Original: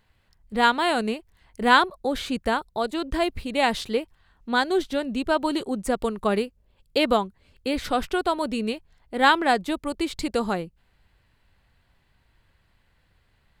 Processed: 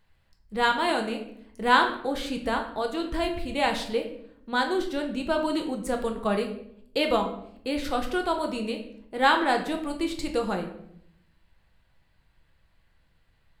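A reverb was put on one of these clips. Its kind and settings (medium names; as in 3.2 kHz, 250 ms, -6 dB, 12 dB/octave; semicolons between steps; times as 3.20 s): simulated room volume 140 m³, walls mixed, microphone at 0.66 m; trim -4.5 dB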